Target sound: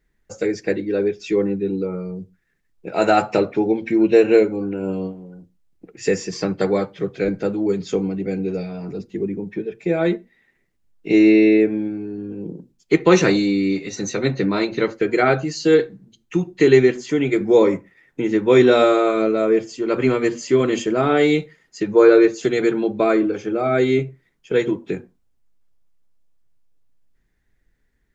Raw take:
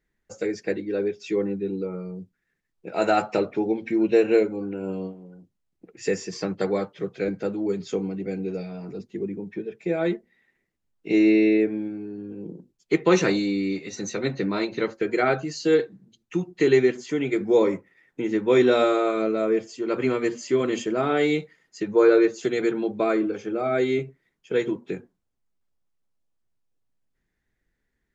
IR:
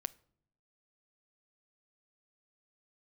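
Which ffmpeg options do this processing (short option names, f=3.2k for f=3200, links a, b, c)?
-filter_complex "[0:a]asplit=2[a][b];[1:a]atrim=start_sample=2205,atrim=end_sample=6174,lowshelf=f=100:g=10.5[c];[b][c]afir=irnorm=-1:irlink=0,volume=4.5dB[d];[a][d]amix=inputs=2:normalize=0,volume=-2.5dB"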